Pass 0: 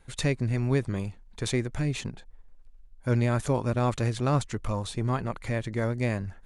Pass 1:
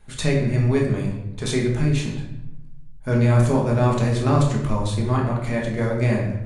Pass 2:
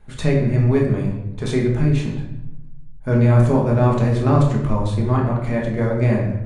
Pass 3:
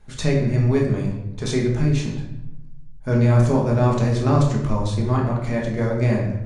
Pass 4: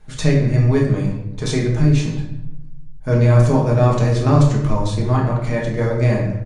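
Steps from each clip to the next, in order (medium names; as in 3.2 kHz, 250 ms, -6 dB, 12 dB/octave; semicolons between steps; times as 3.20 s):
reverberation RT60 0.85 s, pre-delay 5 ms, DRR -2 dB; trim +1.5 dB
treble shelf 2.7 kHz -11 dB; trim +3 dB
peaking EQ 5.7 kHz +9.5 dB 0.98 oct; trim -2 dB
comb 6.5 ms, depth 40%; trim +2.5 dB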